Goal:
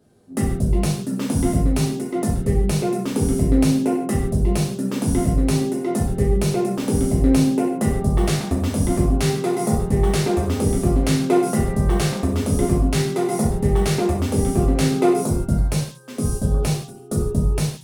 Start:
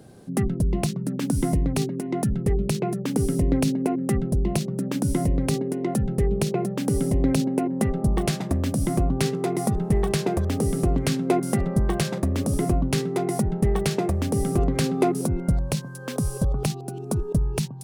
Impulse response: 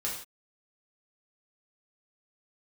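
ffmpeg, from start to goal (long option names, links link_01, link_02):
-filter_complex "[0:a]agate=range=-12dB:threshold=-29dB:ratio=16:detection=peak[link_01];[1:a]atrim=start_sample=2205[link_02];[link_01][link_02]afir=irnorm=-1:irlink=0"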